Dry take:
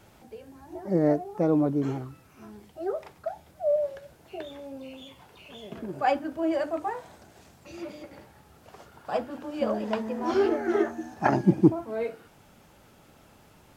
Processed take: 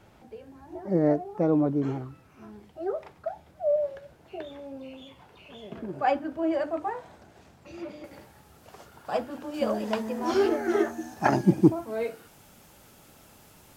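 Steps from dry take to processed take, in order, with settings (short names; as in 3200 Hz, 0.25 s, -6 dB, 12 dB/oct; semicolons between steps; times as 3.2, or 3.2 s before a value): high shelf 5100 Hz -9.5 dB, from 8.04 s +4.5 dB, from 9.54 s +10.5 dB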